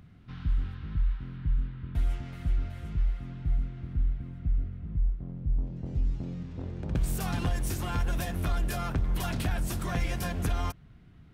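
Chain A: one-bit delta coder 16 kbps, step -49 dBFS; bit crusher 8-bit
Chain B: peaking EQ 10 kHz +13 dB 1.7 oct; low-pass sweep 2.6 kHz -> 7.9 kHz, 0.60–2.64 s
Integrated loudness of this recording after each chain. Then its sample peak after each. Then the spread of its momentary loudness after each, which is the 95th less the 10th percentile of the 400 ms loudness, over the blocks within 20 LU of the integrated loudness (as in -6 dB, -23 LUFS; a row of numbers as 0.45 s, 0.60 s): -33.0 LUFS, -30.5 LUFS; -20.0 dBFS, -12.5 dBFS; 4 LU, 10 LU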